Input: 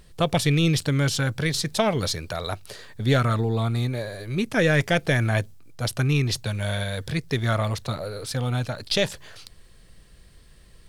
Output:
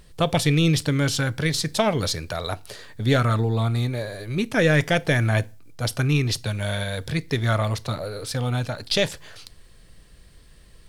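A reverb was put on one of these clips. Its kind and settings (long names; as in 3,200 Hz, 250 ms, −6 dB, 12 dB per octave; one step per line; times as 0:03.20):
feedback delay network reverb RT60 0.34 s, low-frequency decay 1×, high-frequency decay 0.9×, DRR 16.5 dB
level +1 dB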